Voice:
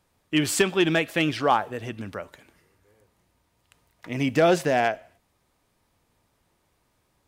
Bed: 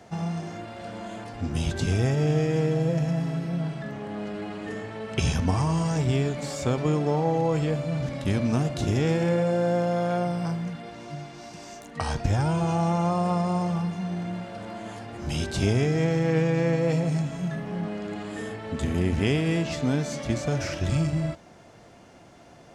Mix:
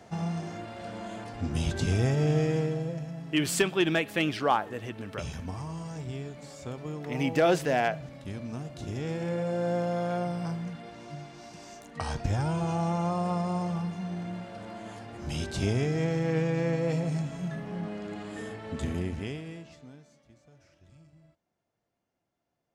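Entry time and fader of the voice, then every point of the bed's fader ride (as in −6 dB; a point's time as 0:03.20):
3.00 s, −4.0 dB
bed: 0:02.49 −2 dB
0:03.12 −13 dB
0:08.65 −13 dB
0:09.72 −4.5 dB
0:18.88 −4.5 dB
0:20.27 −32 dB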